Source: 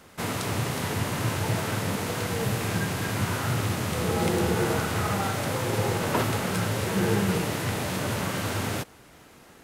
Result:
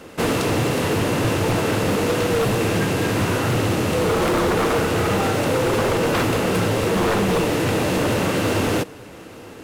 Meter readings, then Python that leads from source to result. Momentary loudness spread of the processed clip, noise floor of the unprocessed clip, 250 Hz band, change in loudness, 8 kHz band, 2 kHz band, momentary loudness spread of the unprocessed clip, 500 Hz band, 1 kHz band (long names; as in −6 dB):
2 LU, −52 dBFS, +8.0 dB, +7.0 dB, +3.5 dB, +6.5 dB, 4 LU, +10.0 dB, +7.0 dB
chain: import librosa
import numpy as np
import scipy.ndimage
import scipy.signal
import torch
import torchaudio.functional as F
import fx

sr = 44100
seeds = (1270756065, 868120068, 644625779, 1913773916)

p1 = fx.high_shelf(x, sr, hz=8300.0, db=-4.5)
p2 = fx.rider(p1, sr, range_db=10, speed_s=0.5)
p3 = p1 + (p2 * librosa.db_to_amplitude(-1.0))
p4 = fx.small_body(p3, sr, hz=(320.0, 470.0, 2700.0), ring_ms=25, db=9)
p5 = 10.0 ** (-14.0 / 20.0) * (np.abs((p4 / 10.0 ** (-14.0 / 20.0) + 3.0) % 4.0 - 2.0) - 1.0)
y = p5 + 10.0 ** (-24.0 / 20.0) * np.pad(p5, (int(883 * sr / 1000.0), 0))[:len(p5)]